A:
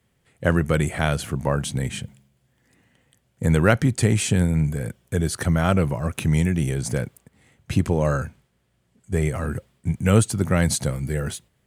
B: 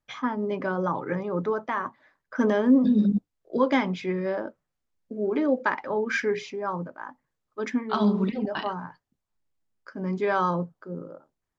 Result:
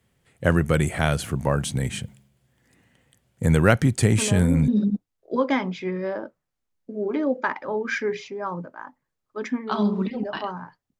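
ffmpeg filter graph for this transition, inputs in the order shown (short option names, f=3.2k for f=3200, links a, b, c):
-filter_complex "[1:a]asplit=2[a][b];[0:a]apad=whole_dur=10.99,atrim=end=10.99,atrim=end=4.682[c];[b]atrim=start=2.898:end=9.21[d];[a]atrim=start=2.4:end=2.9,asetpts=PTS-STARTPTS,volume=-7dB,afade=t=in:d=0.004:c=hsin,afade=t=out:st=0.496:d=0.004:c=hsin,adelay=4180[e];[c][d]acrossfade=d=0.004:c1=hsin:c2=hsin[f];[f][e]amix=inputs=2:normalize=0"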